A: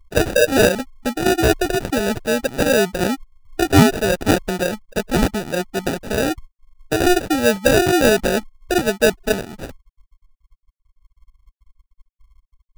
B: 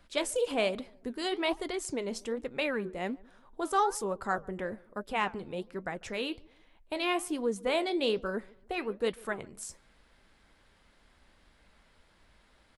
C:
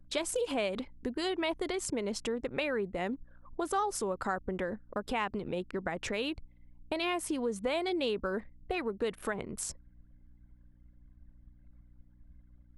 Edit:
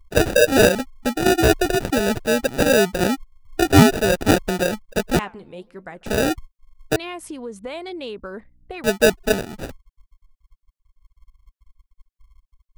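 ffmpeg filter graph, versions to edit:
ffmpeg -i take0.wav -i take1.wav -i take2.wav -filter_complex "[0:a]asplit=3[link_01][link_02][link_03];[link_01]atrim=end=5.192[link_04];[1:a]atrim=start=5.188:end=6.062[link_05];[link_02]atrim=start=6.058:end=6.962[link_06];[2:a]atrim=start=6.958:end=8.842[link_07];[link_03]atrim=start=8.838[link_08];[link_04][link_05]acrossfade=duration=0.004:curve1=hsin:curve2=hsin[link_09];[link_09][link_06]acrossfade=duration=0.004:curve1=hsin:curve2=hsin[link_10];[link_10][link_07]acrossfade=duration=0.004:curve1=hsin:curve2=hsin[link_11];[link_11][link_08]acrossfade=duration=0.004:curve1=hsin:curve2=hsin" out.wav

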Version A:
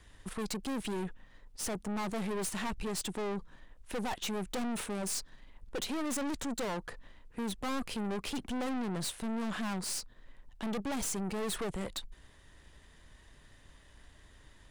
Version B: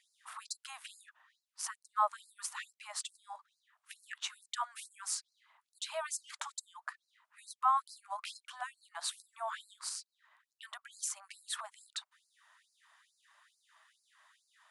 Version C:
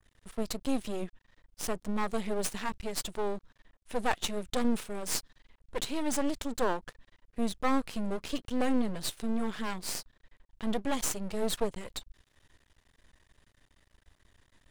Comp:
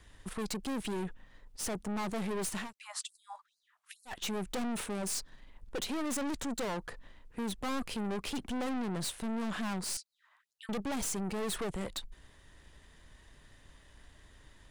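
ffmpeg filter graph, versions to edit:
ffmpeg -i take0.wav -i take1.wav -filter_complex "[1:a]asplit=2[link_01][link_02];[0:a]asplit=3[link_03][link_04][link_05];[link_03]atrim=end=2.73[link_06];[link_01]atrim=start=2.57:end=4.21[link_07];[link_04]atrim=start=4.05:end=9.972[link_08];[link_02]atrim=start=9.968:end=10.692[link_09];[link_05]atrim=start=10.688[link_10];[link_06][link_07]acrossfade=duration=0.16:curve1=tri:curve2=tri[link_11];[link_11][link_08]acrossfade=duration=0.16:curve1=tri:curve2=tri[link_12];[link_12][link_09]acrossfade=duration=0.004:curve1=hsin:curve2=hsin[link_13];[link_13][link_10]acrossfade=duration=0.004:curve1=hsin:curve2=hsin" out.wav

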